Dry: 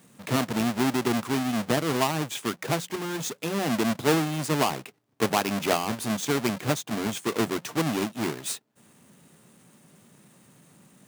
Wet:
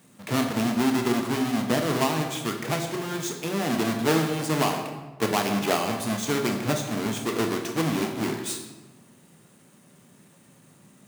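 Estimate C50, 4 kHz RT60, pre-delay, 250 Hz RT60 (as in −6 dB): 6.0 dB, 0.80 s, 19 ms, 1.5 s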